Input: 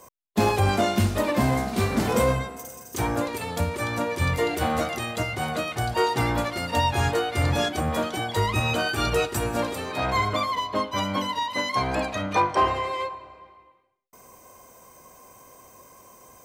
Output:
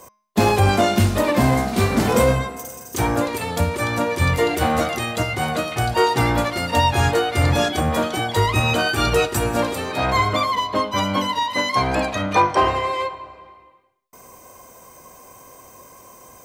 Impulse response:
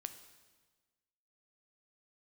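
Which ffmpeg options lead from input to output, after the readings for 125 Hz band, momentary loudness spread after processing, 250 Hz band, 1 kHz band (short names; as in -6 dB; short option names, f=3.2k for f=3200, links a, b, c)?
+5.5 dB, 6 LU, +5.0 dB, +5.0 dB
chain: -af "bandreject=f=209.6:t=h:w=4,bandreject=f=419.2:t=h:w=4,bandreject=f=628.8:t=h:w=4,bandreject=f=838.4:t=h:w=4,bandreject=f=1.048k:t=h:w=4,bandreject=f=1.2576k:t=h:w=4,bandreject=f=1.4672k:t=h:w=4,bandreject=f=1.6768k:t=h:w=4,bandreject=f=1.8864k:t=h:w=4,bandreject=f=2.096k:t=h:w=4,bandreject=f=2.3056k:t=h:w=4,bandreject=f=2.5152k:t=h:w=4,bandreject=f=2.7248k:t=h:w=4,bandreject=f=2.9344k:t=h:w=4,bandreject=f=3.144k:t=h:w=4,bandreject=f=3.3536k:t=h:w=4,bandreject=f=3.5632k:t=h:w=4,bandreject=f=3.7728k:t=h:w=4,bandreject=f=3.9824k:t=h:w=4,bandreject=f=4.192k:t=h:w=4,bandreject=f=4.4016k:t=h:w=4,bandreject=f=4.6112k:t=h:w=4,bandreject=f=4.8208k:t=h:w=4,bandreject=f=5.0304k:t=h:w=4,bandreject=f=5.24k:t=h:w=4,bandreject=f=5.4496k:t=h:w=4,bandreject=f=5.6592k:t=h:w=4,bandreject=f=5.8688k:t=h:w=4,bandreject=f=6.0784k:t=h:w=4,volume=5.5dB"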